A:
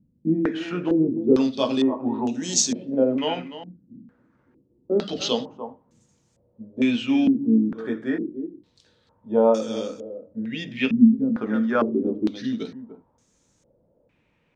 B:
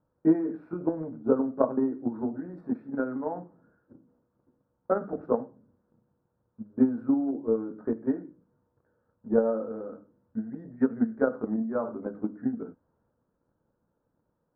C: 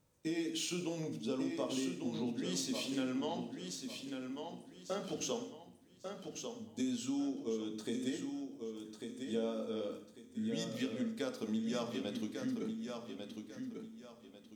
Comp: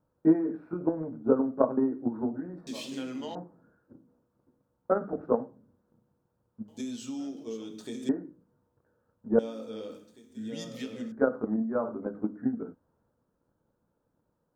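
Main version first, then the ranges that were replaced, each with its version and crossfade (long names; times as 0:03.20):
B
0:02.67–0:03.35: punch in from C
0:06.68–0:08.09: punch in from C
0:09.39–0:11.12: punch in from C
not used: A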